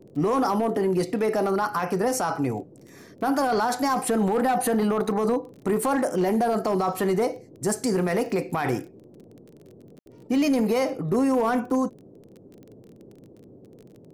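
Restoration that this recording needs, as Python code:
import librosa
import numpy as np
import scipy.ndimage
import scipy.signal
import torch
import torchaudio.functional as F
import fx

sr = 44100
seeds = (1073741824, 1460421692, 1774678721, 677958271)

y = fx.fix_declip(x, sr, threshold_db=-16.5)
y = fx.fix_declick_ar(y, sr, threshold=6.5)
y = fx.fix_ambience(y, sr, seeds[0], print_start_s=11.94, print_end_s=12.44, start_s=9.99, end_s=10.06)
y = fx.noise_reduce(y, sr, print_start_s=11.94, print_end_s=12.44, reduce_db=21.0)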